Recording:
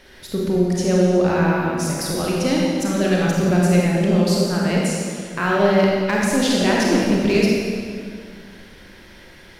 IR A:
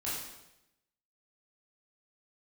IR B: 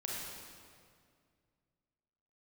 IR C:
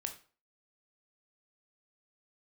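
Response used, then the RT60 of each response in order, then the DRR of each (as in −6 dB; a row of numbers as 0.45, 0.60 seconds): B; 0.90, 2.1, 0.40 seconds; −9.0, −4.0, 5.0 decibels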